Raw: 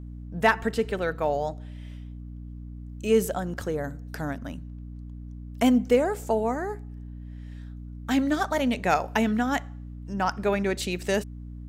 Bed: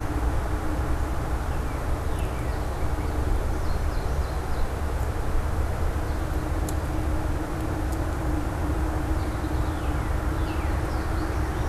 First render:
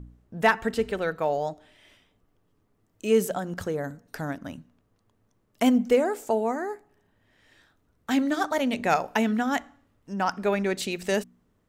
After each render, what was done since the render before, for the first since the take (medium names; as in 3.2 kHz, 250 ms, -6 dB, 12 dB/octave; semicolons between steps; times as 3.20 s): de-hum 60 Hz, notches 5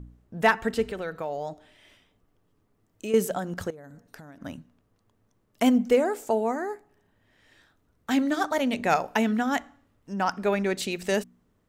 0.90–3.14 s: compression 2.5:1, threshold -30 dBFS; 3.70–4.41 s: compression 16:1, threshold -41 dBFS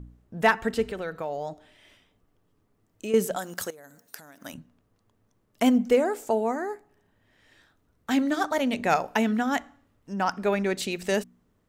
3.36–4.54 s: RIAA curve recording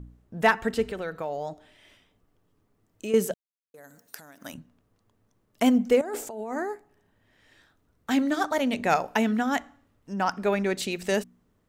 3.34–3.74 s: mute; 6.01–6.63 s: compressor with a negative ratio -33 dBFS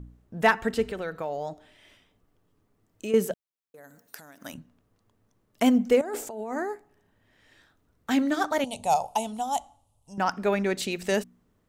3.11–4.15 s: peaking EQ 7.1 kHz -4 dB 1.8 oct; 8.64–10.18 s: FFT filter 120 Hz 0 dB, 230 Hz -13 dB, 350 Hz -16 dB, 840 Hz +5 dB, 1.7 kHz -27 dB, 3 kHz -2 dB, 5.3 kHz -1 dB, 10 kHz +14 dB, 15 kHz -10 dB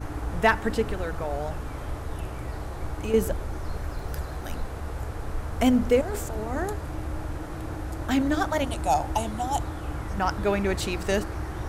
add bed -6 dB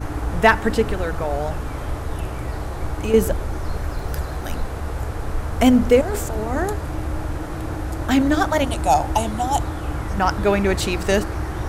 trim +6.5 dB